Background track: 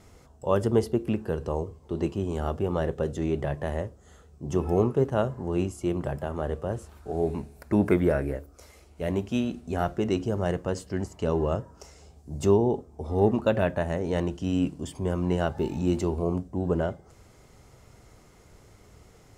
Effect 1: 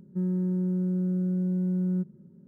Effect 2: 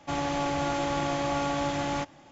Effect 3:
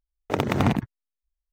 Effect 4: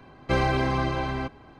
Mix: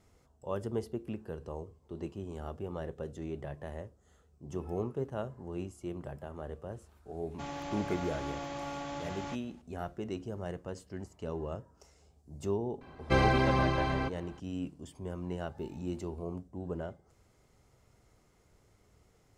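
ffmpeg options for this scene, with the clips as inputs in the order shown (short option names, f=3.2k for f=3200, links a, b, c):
-filter_complex "[0:a]volume=-12dB[a];[2:a]atrim=end=2.31,asetpts=PTS-STARTPTS,volume=-11dB,afade=t=in:d=0.004:c=hsin,afade=t=out:st=2.306:d=0.004:c=hsin,adelay=7310[b];[4:a]atrim=end=1.59,asetpts=PTS-STARTPTS,volume=-2.5dB,afade=t=in:d=0.004:c=hsin,afade=t=out:st=1.586:d=0.004:c=hsin,adelay=12810[c];[a][b][c]amix=inputs=3:normalize=0"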